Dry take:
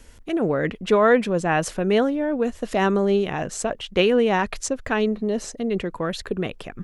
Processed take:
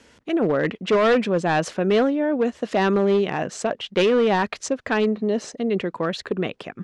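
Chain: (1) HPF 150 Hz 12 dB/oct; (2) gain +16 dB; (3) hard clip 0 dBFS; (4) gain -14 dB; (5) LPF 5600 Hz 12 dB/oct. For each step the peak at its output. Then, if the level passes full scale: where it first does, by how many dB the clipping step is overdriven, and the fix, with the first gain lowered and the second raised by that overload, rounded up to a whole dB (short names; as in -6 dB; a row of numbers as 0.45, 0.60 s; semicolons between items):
-6.5, +9.5, 0.0, -14.0, -13.0 dBFS; step 2, 9.5 dB; step 2 +6 dB, step 4 -4 dB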